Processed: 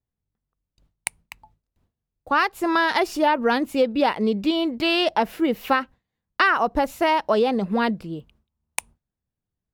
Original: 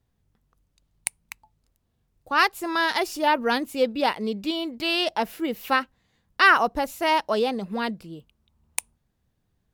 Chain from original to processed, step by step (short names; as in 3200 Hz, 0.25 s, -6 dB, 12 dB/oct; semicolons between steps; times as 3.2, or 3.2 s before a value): gate with hold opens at -47 dBFS; high shelf 3700 Hz -10 dB; compressor 6:1, threshold -23 dBFS, peak gain reduction 10 dB; gain +7.5 dB